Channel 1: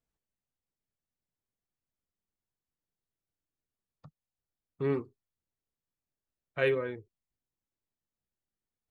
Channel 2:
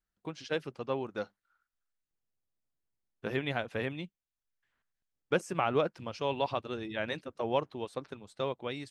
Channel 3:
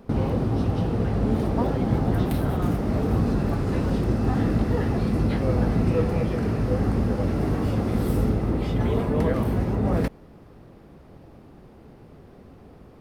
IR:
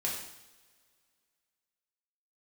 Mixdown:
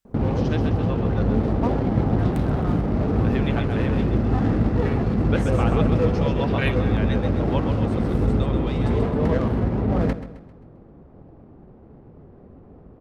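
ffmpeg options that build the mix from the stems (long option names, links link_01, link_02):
-filter_complex "[0:a]tiltshelf=frequency=970:gain=-10,volume=0dB[link_01];[1:a]volume=1dB,asplit=2[link_02][link_03];[link_03]volume=-5.5dB[link_04];[2:a]crystalizer=i=1.5:c=0,adynamicsmooth=sensitivity=3:basefreq=1000,adelay=50,volume=1.5dB,asplit=2[link_05][link_06];[link_06]volume=-13.5dB[link_07];[link_04][link_07]amix=inputs=2:normalize=0,aecho=0:1:132|264|396|528|660|792:1|0.44|0.194|0.0852|0.0375|0.0165[link_08];[link_01][link_02][link_05][link_08]amix=inputs=4:normalize=0"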